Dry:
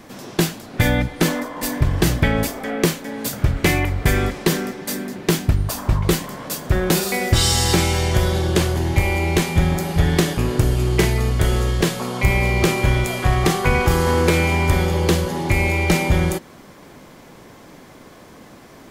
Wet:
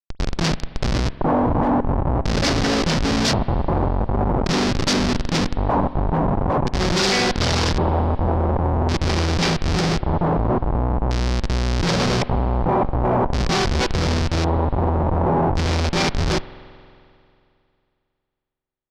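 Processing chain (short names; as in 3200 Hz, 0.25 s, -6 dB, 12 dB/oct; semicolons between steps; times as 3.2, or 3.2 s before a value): low shelf 170 Hz +2 dB; negative-ratio compressor -20 dBFS, ratio -0.5; Schmitt trigger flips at -22.5 dBFS; LFO low-pass square 0.45 Hz 890–5200 Hz; spring tank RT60 2.6 s, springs 45 ms, chirp 35 ms, DRR 15.5 dB; gain +3 dB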